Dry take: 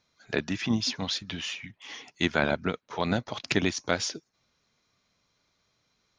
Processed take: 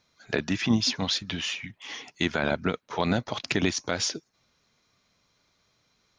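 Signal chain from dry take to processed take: limiter -15 dBFS, peak gain reduction 7.5 dB; gain +3.5 dB

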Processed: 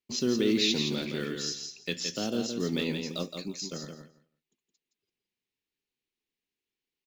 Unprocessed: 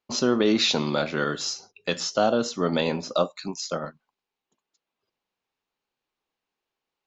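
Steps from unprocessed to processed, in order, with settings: block floating point 7-bit; band shelf 890 Hz -13.5 dB; feedback echo 0.168 s, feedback 16%, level -6 dB; gain -4.5 dB

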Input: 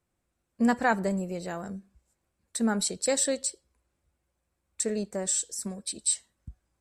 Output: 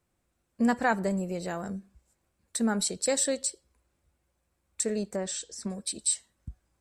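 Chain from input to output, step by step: 5.16–5.7 LPF 4700 Hz 12 dB/oct; in parallel at -1.5 dB: compressor, threshold -35 dBFS, peak gain reduction 15 dB; on the sum: gain -2.5 dB

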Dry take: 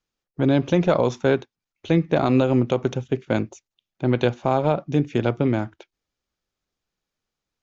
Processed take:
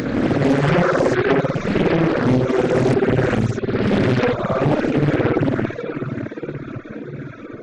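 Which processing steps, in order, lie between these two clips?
spectral swells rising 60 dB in 2.53 s; fixed phaser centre 3000 Hz, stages 6; on a send: diffused feedback echo 0.612 s, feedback 48%, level -8 dB; on the sum: upward compressor, threshold -27 dBFS; spring tank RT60 1.4 s, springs 55 ms, chirp 55 ms, DRR -4.5 dB; reverb removal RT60 1.4 s; limiter -9 dBFS, peak gain reduction 6.5 dB; reverb removal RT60 0.77 s; Doppler distortion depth 0.83 ms; gain +3.5 dB

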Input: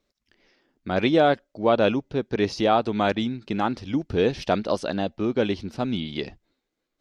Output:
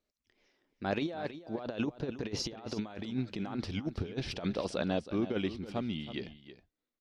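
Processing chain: Doppler pass-by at 3.11, 20 m/s, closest 18 m; negative-ratio compressor -30 dBFS, ratio -0.5; on a send: echo 0.322 s -13 dB; on the sum: gain -3.5 dB

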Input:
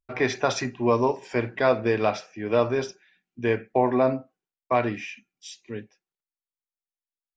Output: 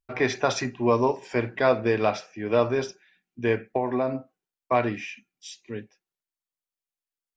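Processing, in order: 3.67–4.15 compressor, threshold -21 dBFS, peak gain reduction 6.5 dB

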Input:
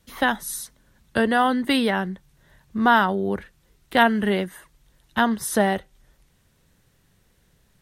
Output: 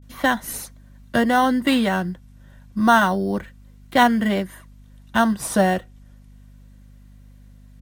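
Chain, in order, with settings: vibrato 0.31 Hz 75 cents; notch comb 430 Hz; in parallel at -11 dB: sample-and-hold 9×; on the sum: hum 50 Hz, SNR 24 dB; gain +1 dB

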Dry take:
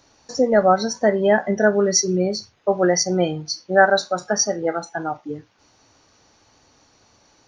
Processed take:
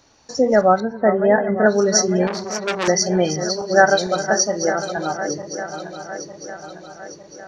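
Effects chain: regenerating reverse delay 0.452 s, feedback 73%, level -10 dB; 0.8–1.66 LPF 2000 Hz 24 dB/oct; 2.27–2.88 core saturation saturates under 2800 Hz; gain +1 dB

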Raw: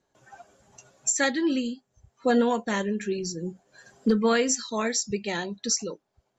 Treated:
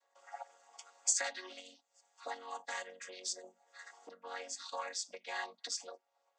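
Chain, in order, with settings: chord vocoder major triad, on F#3; 1.24–3.42 high shelf 2600 Hz +9.5 dB; compressor 16:1, threshold -37 dBFS, peak gain reduction 22.5 dB; HPF 670 Hz 24 dB/oct; high shelf 5300 Hz +8 dB; gain +8 dB

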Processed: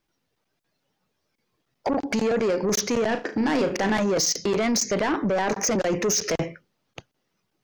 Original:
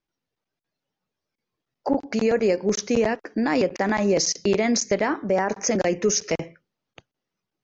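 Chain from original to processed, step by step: in parallel at -0.5 dB: negative-ratio compressor -26 dBFS, ratio -0.5; on the sum: soft clip -18.5 dBFS, distortion -11 dB; 3.07–4 flutter echo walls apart 6.3 m, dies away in 0.26 s

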